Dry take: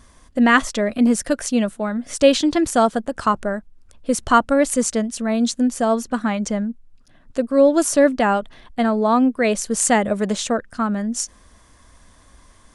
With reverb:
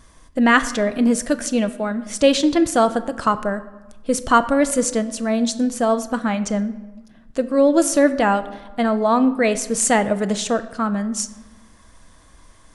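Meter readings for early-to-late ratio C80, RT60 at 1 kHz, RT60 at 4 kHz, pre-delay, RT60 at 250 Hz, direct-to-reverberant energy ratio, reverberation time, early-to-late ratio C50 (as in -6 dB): 16.5 dB, 1.2 s, 0.75 s, 6 ms, 1.6 s, 10.5 dB, 1.2 s, 15.0 dB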